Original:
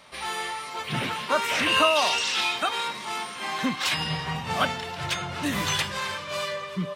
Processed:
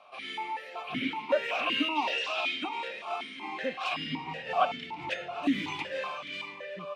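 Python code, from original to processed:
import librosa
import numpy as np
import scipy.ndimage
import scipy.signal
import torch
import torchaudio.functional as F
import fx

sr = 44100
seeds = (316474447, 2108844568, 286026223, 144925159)

y = x + 10.0 ** (-15.5 / 20.0) * np.pad(x, (int(478 * sr / 1000.0), 0))[:len(x)]
y = fx.resample_bad(y, sr, factor=2, down='filtered', up='hold', at=(0.59, 2.15))
y = fx.vowel_held(y, sr, hz=5.3)
y = y * 10.0 ** (7.0 / 20.0)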